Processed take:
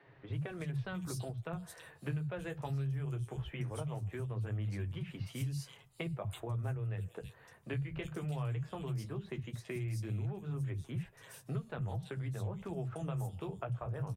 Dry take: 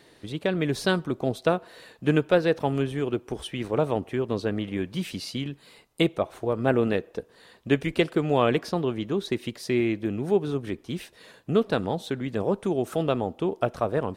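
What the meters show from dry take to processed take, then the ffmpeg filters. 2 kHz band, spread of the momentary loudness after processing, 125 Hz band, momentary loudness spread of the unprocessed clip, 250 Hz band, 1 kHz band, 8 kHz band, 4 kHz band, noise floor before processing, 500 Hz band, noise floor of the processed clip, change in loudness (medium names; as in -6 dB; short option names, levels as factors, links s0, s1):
-15.5 dB, 6 LU, -4.0 dB, 10 LU, -16.5 dB, -17.0 dB, -8.0 dB, -18.0 dB, -57 dBFS, -20.0 dB, -61 dBFS, -13.0 dB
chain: -filter_complex "[0:a]acrossover=split=150|3000[s0][s1][s2];[s1]acompressor=threshold=0.0251:ratio=3[s3];[s0][s3][s2]amix=inputs=3:normalize=0,equalizer=f=125:t=o:w=1:g=12,equalizer=f=250:t=o:w=1:g=-10,equalizer=f=500:t=o:w=1:g=-4,equalizer=f=4000:t=o:w=1:g=-11,acrossover=split=190|3400[s4][s5][s6];[s4]adelay=60[s7];[s6]adelay=330[s8];[s7][s5][s8]amix=inputs=3:normalize=0,acompressor=threshold=0.0224:ratio=6,flanger=delay=7.3:depth=7.8:regen=-34:speed=0.18:shape=sinusoidal,volume=1.19"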